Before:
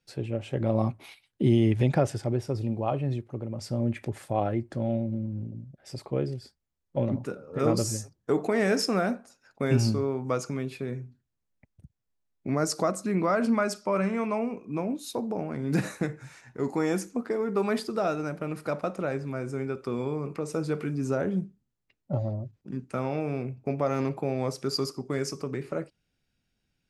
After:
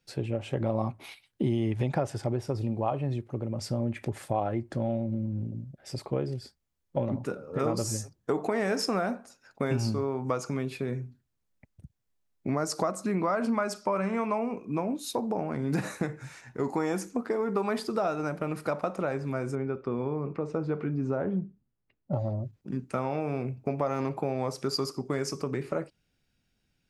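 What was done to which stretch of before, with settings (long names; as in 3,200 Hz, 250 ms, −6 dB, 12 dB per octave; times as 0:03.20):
0:19.55–0:22.13: head-to-tape spacing loss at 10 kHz 29 dB
whole clip: dynamic equaliser 920 Hz, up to +6 dB, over −41 dBFS, Q 1.3; downward compressor 3 to 1, threshold −29 dBFS; level +2.5 dB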